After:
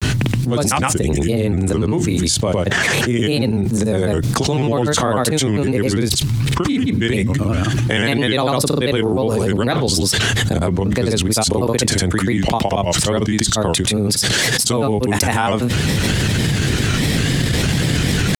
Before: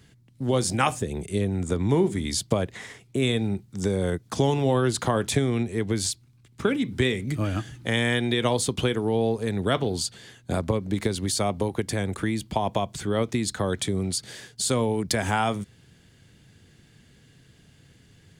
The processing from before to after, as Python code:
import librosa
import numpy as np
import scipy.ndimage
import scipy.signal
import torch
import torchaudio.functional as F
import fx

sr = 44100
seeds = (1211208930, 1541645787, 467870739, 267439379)

p1 = fx.level_steps(x, sr, step_db=13)
p2 = x + F.gain(torch.from_numpy(p1), 1.5).numpy()
p3 = fx.granulator(p2, sr, seeds[0], grain_ms=100.0, per_s=20.0, spray_ms=100.0, spread_st=3)
p4 = fx.env_flatten(p3, sr, amount_pct=100)
y = F.gain(torch.from_numpy(p4), -1.5).numpy()